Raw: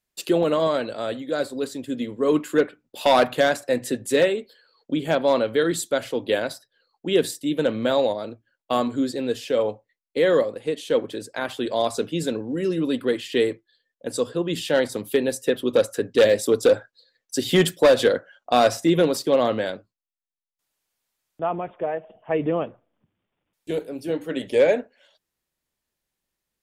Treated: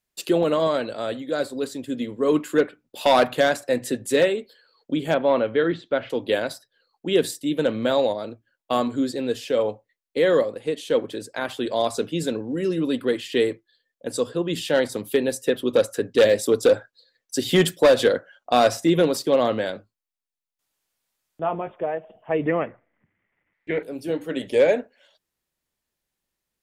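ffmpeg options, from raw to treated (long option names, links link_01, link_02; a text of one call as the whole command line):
ffmpeg -i in.wav -filter_complex "[0:a]asettb=1/sr,asplit=3[link_01][link_02][link_03];[link_01]atrim=end=5.144[link_04];[link_02]atrim=start=5.14:end=6.1,asetpts=PTS-STARTPTS,afade=type=in:duration=0.004:curve=qsin,afade=type=out:start_time=0.956:duration=0.004:curve=qsin,lowpass=frequency=3100:width=0.5412,lowpass=frequency=3100:width=1.3066[link_05];[link_03]atrim=start=6.096[link_06];[link_04][link_05]acrossfade=duration=0.004:curve1=hsin:curve2=qsin[link_07];[link_07][link_06]acrossfade=duration=0.004:curve1=qsin:curve2=hsin,asettb=1/sr,asplit=3[link_08][link_09][link_10];[link_08]atrim=end=19.734[link_11];[link_09]atrim=start=19.73:end=21.75,asetpts=PTS-STARTPTS,afade=type=in:duration=0.004:curve=qsin,afade=type=out:start_time=2.016:duration=0.004:curve=qsin,asplit=2[link_12][link_13];[link_13]adelay=19,volume=-8dB[link_14];[link_12][link_14]amix=inputs=2:normalize=0,atrim=end_sample=89082[link_15];[link_10]atrim=start=21.746[link_16];[link_11][link_15]acrossfade=duration=0.004:curve1=hsin:curve2=qsin[link_17];[link_17][link_16]acrossfade=duration=0.004:curve1=qsin:curve2=hsin,asettb=1/sr,asplit=3[link_18][link_19][link_20];[link_18]atrim=end=22.474[link_21];[link_19]atrim=start=22.47:end=23.83,asetpts=PTS-STARTPTS,afade=type=in:duration=0.004:curve=qsin,afade=type=out:start_time=1.356:duration=0.004:curve=qsin,lowpass=frequency=2000:width_type=q:width=8.5[link_22];[link_20]atrim=start=23.826[link_23];[link_21][link_22]acrossfade=duration=0.004:curve1=hsin:curve2=qsin[link_24];[link_24][link_23]acrossfade=duration=0.004:curve1=qsin:curve2=hsin" out.wav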